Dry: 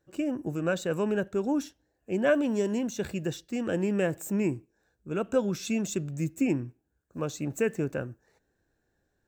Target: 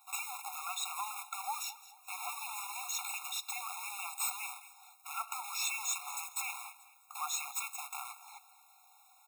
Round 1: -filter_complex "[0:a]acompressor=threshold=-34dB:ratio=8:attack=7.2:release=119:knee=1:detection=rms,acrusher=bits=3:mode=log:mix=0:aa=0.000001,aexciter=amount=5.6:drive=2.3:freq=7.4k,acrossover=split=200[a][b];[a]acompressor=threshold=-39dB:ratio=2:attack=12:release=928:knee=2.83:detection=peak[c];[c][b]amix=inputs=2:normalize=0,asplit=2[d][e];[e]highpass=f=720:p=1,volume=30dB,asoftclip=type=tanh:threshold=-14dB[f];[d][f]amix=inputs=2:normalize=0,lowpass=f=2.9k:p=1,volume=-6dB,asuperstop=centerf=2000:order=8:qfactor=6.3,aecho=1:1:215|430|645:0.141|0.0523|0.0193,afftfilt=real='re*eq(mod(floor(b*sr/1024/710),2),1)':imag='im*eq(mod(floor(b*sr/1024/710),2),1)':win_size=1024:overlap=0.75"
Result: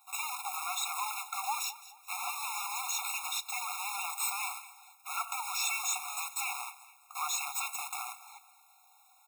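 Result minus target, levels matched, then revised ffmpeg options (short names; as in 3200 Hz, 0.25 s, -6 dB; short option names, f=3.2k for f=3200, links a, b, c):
compressor: peak gain reduction -8 dB
-filter_complex "[0:a]acompressor=threshold=-43dB:ratio=8:attack=7.2:release=119:knee=1:detection=rms,acrusher=bits=3:mode=log:mix=0:aa=0.000001,aexciter=amount=5.6:drive=2.3:freq=7.4k,acrossover=split=200[a][b];[a]acompressor=threshold=-39dB:ratio=2:attack=12:release=928:knee=2.83:detection=peak[c];[c][b]amix=inputs=2:normalize=0,asplit=2[d][e];[e]highpass=f=720:p=1,volume=30dB,asoftclip=type=tanh:threshold=-14dB[f];[d][f]amix=inputs=2:normalize=0,lowpass=f=2.9k:p=1,volume=-6dB,asuperstop=centerf=2000:order=8:qfactor=6.3,aecho=1:1:215|430|645:0.141|0.0523|0.0193,afftfilt=real='re*eq(mod(floor(b*sr/1024/710),2),1)':imag='im*eq(mod(floor(b*sr/1024/710),2),1)':win_size=1024:overlap=0.75"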